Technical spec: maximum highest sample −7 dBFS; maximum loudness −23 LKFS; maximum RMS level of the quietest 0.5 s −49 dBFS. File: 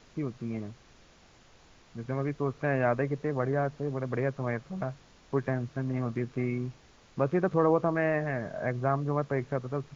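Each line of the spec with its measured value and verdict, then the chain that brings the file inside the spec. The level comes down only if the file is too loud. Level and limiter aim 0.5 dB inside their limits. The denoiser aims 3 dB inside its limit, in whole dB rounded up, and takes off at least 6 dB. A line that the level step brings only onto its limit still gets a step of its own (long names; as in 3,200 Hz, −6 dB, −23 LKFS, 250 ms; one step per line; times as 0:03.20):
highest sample −12.0 dBFS: in spec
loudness −31.0 LKFS: in spec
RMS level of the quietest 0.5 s −58 dBFS: in spec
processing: no processing needed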